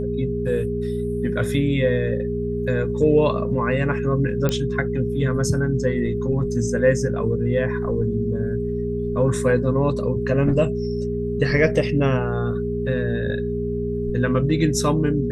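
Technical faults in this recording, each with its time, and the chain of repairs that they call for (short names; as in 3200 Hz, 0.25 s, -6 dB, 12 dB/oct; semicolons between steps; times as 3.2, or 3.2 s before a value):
hum 60 Hz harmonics 4 -27 dBFS
tone 410 Hz -25 dBFS
4.49 pop -8 dBFS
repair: de-click; de-hum 60 Hz, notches 4; notch 410 Hz, Q 30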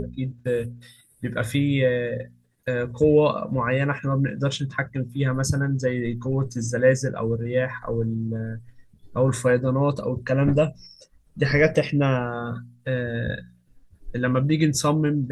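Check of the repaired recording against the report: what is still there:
none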